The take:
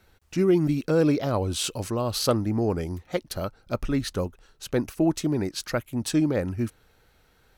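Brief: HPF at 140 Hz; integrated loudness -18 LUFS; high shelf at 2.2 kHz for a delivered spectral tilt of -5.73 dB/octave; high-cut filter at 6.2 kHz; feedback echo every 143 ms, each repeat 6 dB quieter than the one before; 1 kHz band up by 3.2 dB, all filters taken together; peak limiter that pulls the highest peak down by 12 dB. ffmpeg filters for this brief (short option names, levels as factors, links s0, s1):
-af "highpass=140,lowpass=6200,equalizer=f=1000:t=o:g=5,highshelf=f=2200:g=-3.5,alimiter=limit=0.133:level=0:latency=1,aecho=1:1:143|286|429|572|715|858:0.501|0.251|0.125|0.0626|0.0313|0.0157,volume=3.35"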